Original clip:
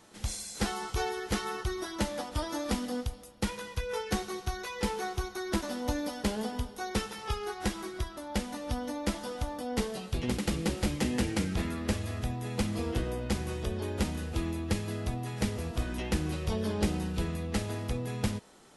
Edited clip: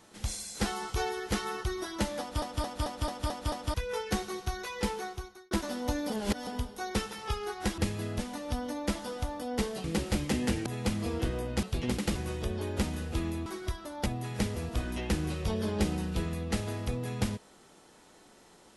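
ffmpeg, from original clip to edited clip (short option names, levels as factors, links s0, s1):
-filter_complex "[0:a]asplit=19[s0][s1][s2][s3][s4][s5][s6][s7][s8][s9][s10][s11][s12][s13][s14][s15][s16][s17][s18];[s0]atrim=end=2.422[s19];[s1]atrim=start=2.198:end=2.422[s20];[s2]atrim=start=2.198:end=2.422[s21];[s3]atrim=start=2.198:end=2.422[s22];[s4]atrim=start=2.198:end=2.422[s23];[s5]atrim=start=2.198:end=2.422[s24];[s6]atrim=start=2.198:end=2.422[s25];[s7]atrim=start=3.738:end=5.51,asetpts=PTS-STARTPTS,afade=t=out:st=1.102:d=0.67[s26];[s8]atrim=start=5.51:end=6.102,asetpts=PTS-STARTPTS,afade=t=in:d=0.004:c=hsin[s27];[s9]atrim=start=6.098:end=6.472,asetpts=PTS-STARTPTS,areverse[s28];[s10]atrim=start=6.468:end=7.782[s29];[s11]atrim=start=14.668:end=15.082[s30];[s12]atrim=start=8.378:end=10.032[s31];[s13]atrim=start=10.548:end=11.372[s32];[s14]atrim=start=12.388:end=13.362[s33];[s15]atrim=start=10.028:end=10.552[s34];[s16]atrim=start=13.358:end=14.672[s35];[s17]atrim=start=7.778:end=8.382[s36];[s18]atrim=start=15.078[s37];[s19][s20]acrossfade=d=0.004:c1=hsin:c2=hsin[s38];[s38][s21]acrossfade=d=0.004:c1=hsin:c2=hsin[s39];[s39][s22]acrossfade=d=0.004:c1=hsin:c2=hsin[s40];[s40][s23]acrossfade=d=0.004:c1=hsin:c2=hsin[s41];[s41][s24]acrossfade=d=0.004:c1=hsin:c2=hsin[s42];[s42][s25]acrossfade=d=0.004:c1=hsin:c2=hsin[s43];[s26][s27]concat=n=2:v=0:a=1[s44];[s43][s44]acrossfade=d=0.004:c1=hsin:c2=hsin[s45];[s45][s28]acrossfade=d=0.004:c1=hsin:c2=hsin[s46];[s46][s29]acrossfade=d=0.004:c1=hsin:c2=hsin[s47];[s47][s30]acrossfade=d=0.004:c1=hsin:c2=hsin[s48];[s48][s31]acrossfade=d=0.004:c1=hsin:c2=hsin[s49];[s49][s32]acrossfade=d=0.004:c1=hsin:c2=hsin[s50];[s50][s33]acrossfade=d=0.004:c1=hsin:c2=hsin[s51];[s51][s34]acrossfade=d=0.004:c1=hsin:c2=hsin[s52];[s52][s35]acrossfade=d=0.004:c1=hsin:c2=hsin[s53];[s53][s36]acrossfade=d=0.004:c1=hsin:c2=hsin[s54];[s54][s37]acrossfade=d=0.004:c1=hsin:c2=hsin"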